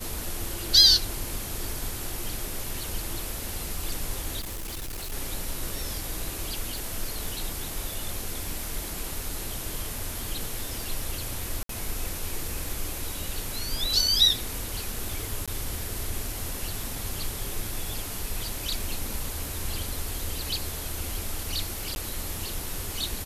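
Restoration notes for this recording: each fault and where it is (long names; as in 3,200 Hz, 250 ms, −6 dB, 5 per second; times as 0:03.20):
surface crackle 11 per second −33 dBFS
0:04.39–0:05.13: clipping −31.5 dBFS
0:06.78: click
0:11.63–0:11.69: drop-out 63 ms
0:15.46–0:15.48: drop-out 16 ms
0:21.95–0:21.96: drop-out 11 ms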